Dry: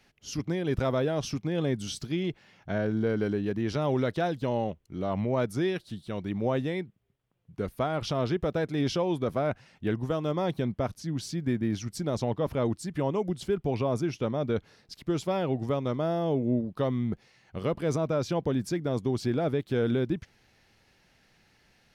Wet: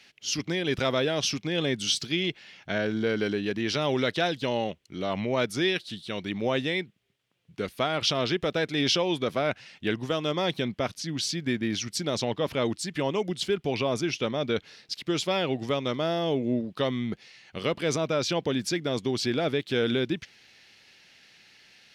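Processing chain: frequency weighting D; trim +1.5 dB

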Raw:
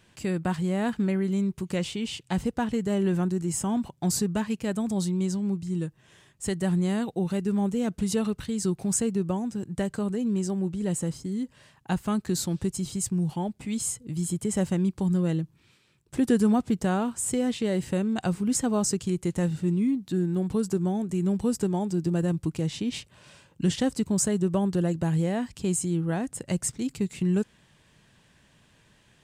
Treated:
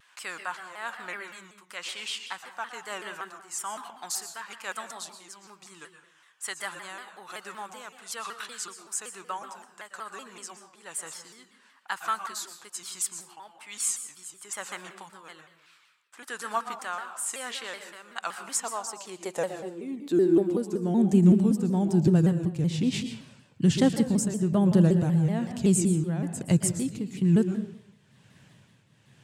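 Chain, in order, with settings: tremolo triangle 1.1 Hz, depth 75%; high-pass sweep 1.2 kHz -> 120 Hz, 18.37–22.01 s; reverberation RT60 0.65 s, pre-delay 111 ms, DRR 8 dB; vibrato with a chosen wave saw down 5.3 Hz, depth 160 cents; trim +2.5 dB

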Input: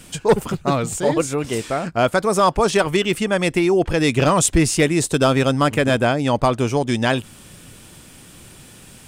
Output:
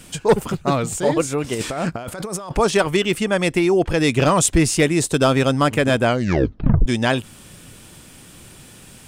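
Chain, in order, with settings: 1.54–2.58 s: compressor with a negative ratio -27 dBFS, ratio -1; 6.06 s: tape stop 0.80 s

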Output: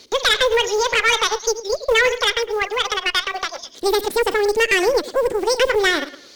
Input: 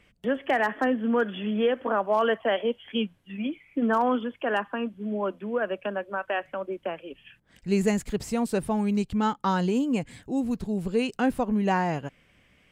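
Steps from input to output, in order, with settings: chunks repeated in reverse 123 ms, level -14 dB; speed mistake 7.5 ips tape played at 15 ips; ten-band graphic EQ 125 Hz -4 dB, 250 Hz +10 dB, 500 Hz +12 dB, 1 kHz -4 dB, 2 kHz +8 dB, 4 kHz +6 dB, 8 kHz +6 dB; companded quantiser 8-bit; tape echo 107 ms, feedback 32%, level -19 dB, low-pass 5.7 kHz; in parallel at +3 dB: compression, threshold -31 dBFS, peak gain reduction 20.5 dB; on the sum: tilt shelf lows -5.5 dB, about 830 Hz; valve stage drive 9 dB, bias 0.55; warped record 33 1/3 rpm, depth 100 cents

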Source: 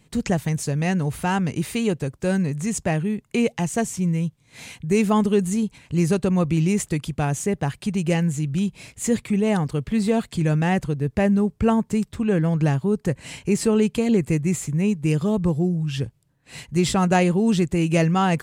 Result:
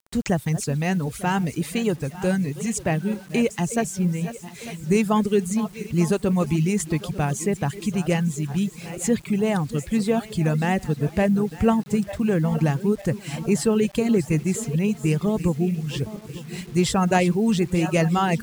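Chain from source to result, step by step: backward echo that repeats 449 ms, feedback 66%, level -12.5 dB; reverb removal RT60 0.67 s; bit crusher 8-bit

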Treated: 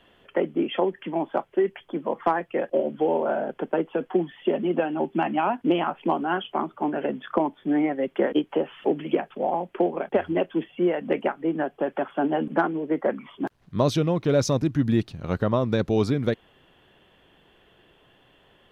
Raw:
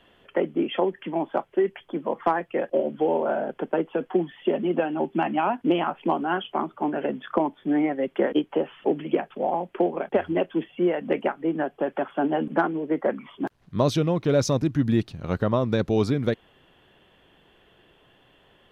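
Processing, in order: 8.23–9.30 s: tape noise reduction on one side only encoder only

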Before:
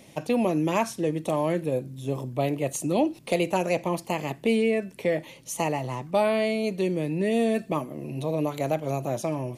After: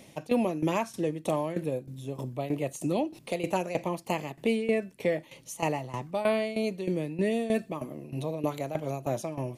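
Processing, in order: tremolo saw down 3.2 Hz, depth 80%

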